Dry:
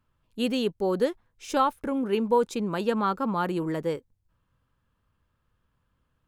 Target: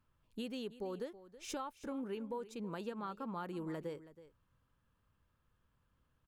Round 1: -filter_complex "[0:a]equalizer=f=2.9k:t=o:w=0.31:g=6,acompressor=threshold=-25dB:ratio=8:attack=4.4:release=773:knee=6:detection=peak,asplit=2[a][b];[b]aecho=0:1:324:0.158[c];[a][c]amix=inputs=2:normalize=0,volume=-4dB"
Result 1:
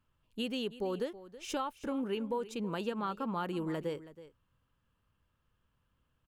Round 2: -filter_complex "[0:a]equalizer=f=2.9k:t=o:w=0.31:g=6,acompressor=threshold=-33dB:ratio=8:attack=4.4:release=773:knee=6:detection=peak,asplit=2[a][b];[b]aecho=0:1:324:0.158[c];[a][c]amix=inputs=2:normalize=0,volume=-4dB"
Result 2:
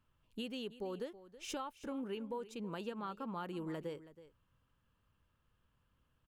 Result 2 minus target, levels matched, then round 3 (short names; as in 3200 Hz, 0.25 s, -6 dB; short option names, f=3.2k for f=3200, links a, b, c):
4000 Hz band +3.0 dB
-filter_complex "[0:a]acompressor=threshold=-33dB:ratio=8:attack=4.4:release=773:knee=6:detection=peak,asplit=2[a][b];[b]aecho=0:1:324:0.158[c];[a][c]amix=inputs=2:normalize=0,volume=-4dB"